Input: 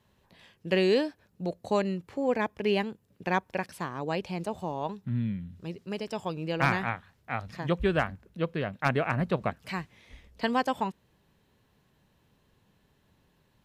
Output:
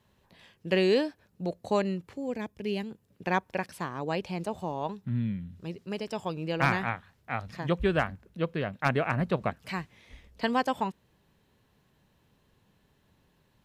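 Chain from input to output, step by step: 2.13–2.91 s: peaking EQ 1.1 kHz -12.5 dB 2.9 oct

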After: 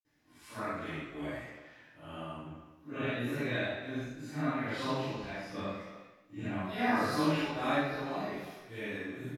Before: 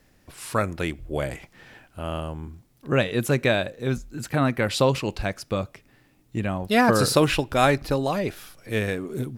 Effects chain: phase randomisation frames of 200 ms; speakerphone echo 310 ms, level -15 dB; 5.48–6.61 s: waveshaping leveller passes 1; reverberation, pre-delay 47 ms; dynamic bell 7.3 kHz, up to -6 dB, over -55 dBFS, Q 0.83

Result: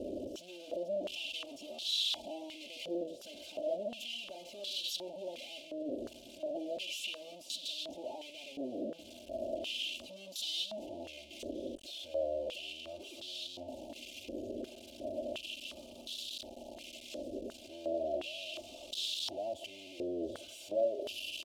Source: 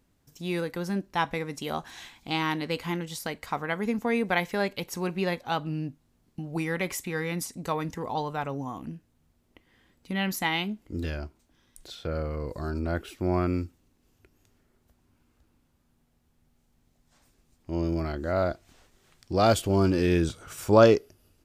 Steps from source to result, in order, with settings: one-bit comparator; elliptic band-stop 650–2900 Hz, stop band 40 dB; comb 3.3 ms, depth 97%; step-sequenced band-pass 2.8 Hz 470–3700 Hz; trim +2 dB

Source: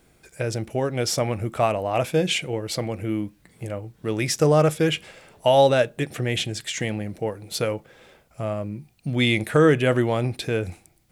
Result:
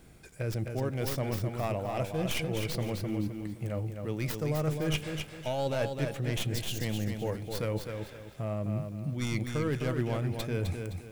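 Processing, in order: tracing distortion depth 0.22 ms; tone controls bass +6 dB, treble 0 dB; reverse; compression 6:1, threshold -30 dBFS, peak gain reduction 18 dB; reverse; spectral replace 6.56–6.78 s, 600–2600 Hz before; bit-crushed delay 258 ms, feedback 35%, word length 10-bit, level -5.5 dB

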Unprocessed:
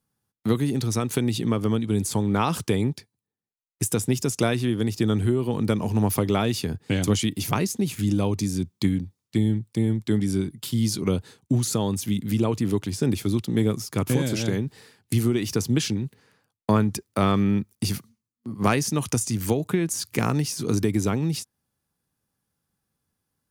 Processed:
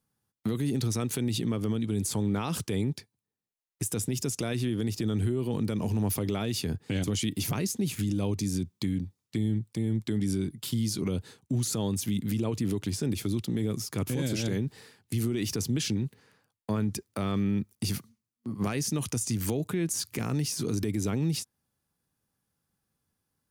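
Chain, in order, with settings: dynamic bell 1 kHz, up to -5 dB, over -38 dBFS, Q 1; peak limiter -19 dBFS, peak gain reduction 10 dB; trim -1.5 dB

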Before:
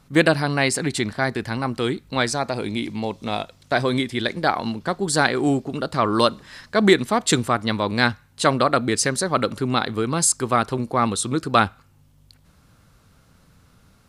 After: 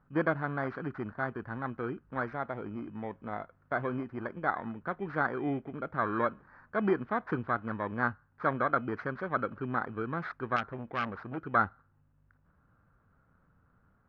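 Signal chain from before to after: bit-reversed sample order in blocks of 16 samples; four-pole ladder low-pass 1.7 kHz, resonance 55%; 10.56–11.38 s: transformer saturation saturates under 1.6 kHz; trim -2.5 dB

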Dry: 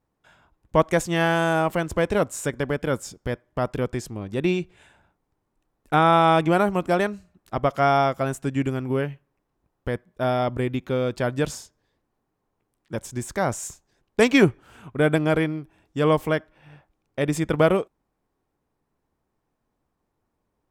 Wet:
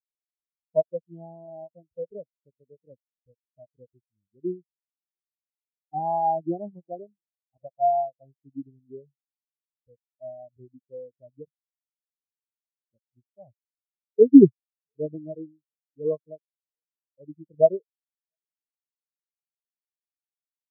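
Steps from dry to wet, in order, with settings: brick-wall FIR band-stop 1.1–2.7 kHz; delay 696 ms -21.5 dB; spectral contrast expander 4:1; trim +2.5 dB

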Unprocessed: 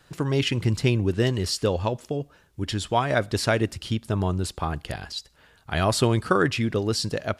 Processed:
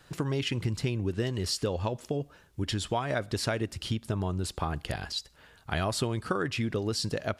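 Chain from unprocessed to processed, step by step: compression 4:1, threshold -27 dBFS, peak gain reduction 10.5 dB

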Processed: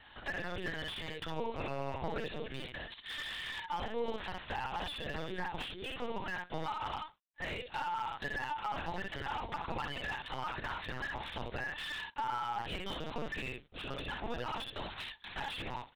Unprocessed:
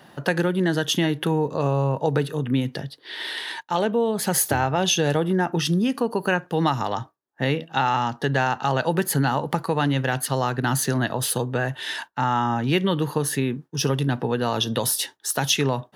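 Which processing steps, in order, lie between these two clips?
CVSD coder 32 kbps; differentiator; early reflections 49 ms -9 dB, 60 ms -5 dB; compression 20:1, threshold -41 dBFS, peak gain reduction 11 dB; comb 2.3 ms, depth 64%; LPC vocoder at 8 kHz pitch kept; distance through air 190 m; slew-rate limiter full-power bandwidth 13 Hz; trim +8 dB

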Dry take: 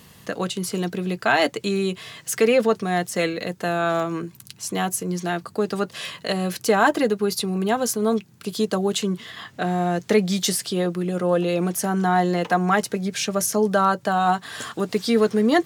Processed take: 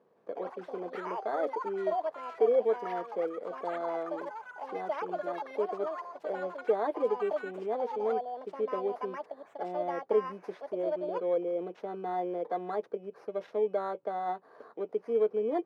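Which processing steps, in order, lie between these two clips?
bit-reversed sample order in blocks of 16 samples; ladder band-pass 540 Hz, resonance 45%; ever faster or slower copies 163 ms, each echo +6 st, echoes 3, each echo -6 dB

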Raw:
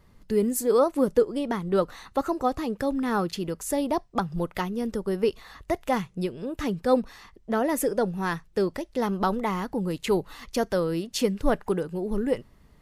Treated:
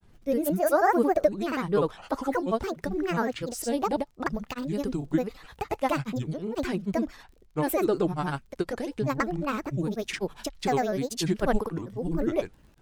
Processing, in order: granulator, pitch spread up and down by 7 st; crackle 32 per s -49 dBFS

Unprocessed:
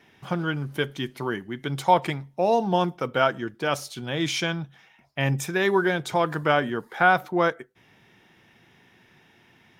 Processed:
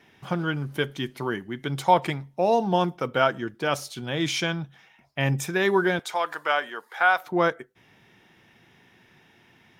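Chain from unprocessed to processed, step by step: 5.99–7.27 s: high-pass 730 Hz 12 dB/octave

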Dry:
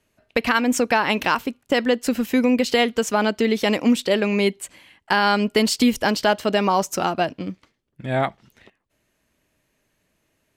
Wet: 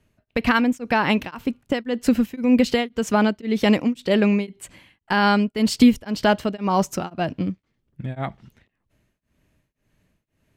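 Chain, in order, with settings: tone controls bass +10 dB, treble -4 dB; tremolo of two beating tones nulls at 1.9 Hz

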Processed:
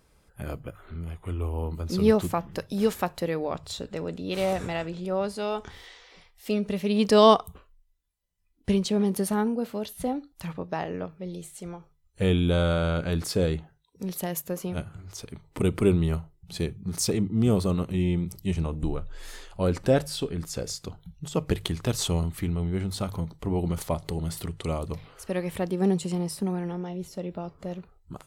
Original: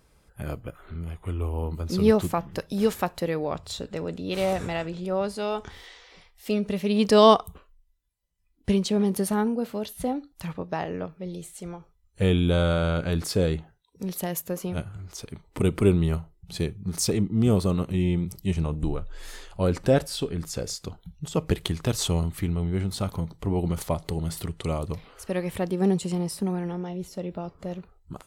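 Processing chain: hum notches 50/100/150 Hz; trim -1 dB

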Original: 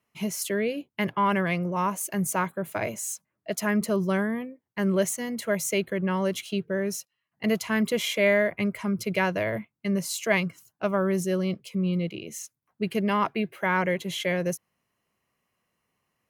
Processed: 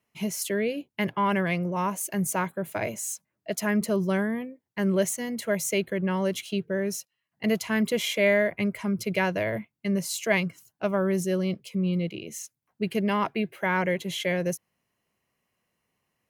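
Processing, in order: peaking EQ 1.2 kHz -4 dB 0.45 oct

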